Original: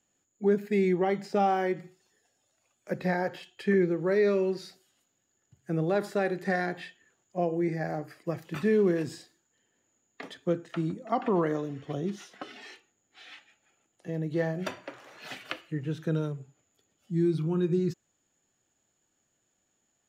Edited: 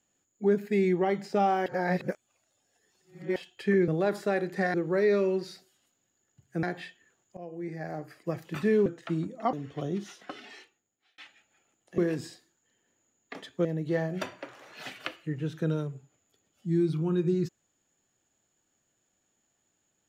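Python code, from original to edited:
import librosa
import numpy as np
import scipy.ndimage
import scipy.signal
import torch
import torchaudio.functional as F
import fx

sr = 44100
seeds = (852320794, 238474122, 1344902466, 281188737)

y = fx.edit(x, sr, fx.reverse_span(start_s=1.66, length_s=1.7),
    fx.move(start_s=5.77, length_s=0.86, to_s=3.88),
    fx.fade_in_from(start_s=7.37, length_s=0.93, floor_db=-18.0),
    fx.move(start_s=8.86, length_s=1.67, to_s=14.1),
    fx.cut(start_s=11.2, length_s=0.45),
    fx.fade_out_span(start_s=12.51, length_s=0.79), tone=tone)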